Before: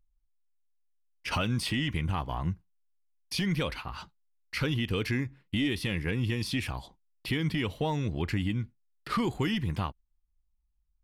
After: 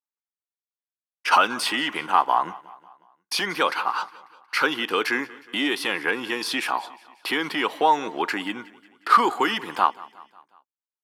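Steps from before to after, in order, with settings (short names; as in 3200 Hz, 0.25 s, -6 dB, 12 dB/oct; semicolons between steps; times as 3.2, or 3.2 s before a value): expander -58 dBFS; HPF 320 Hz 24 dB/oct; band shelf 1100 Hz +9.5 dB 1.3 oct; on a send: feedback echo 0.181 s, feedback 54%, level -21 dB; on the sum: gain +8 dB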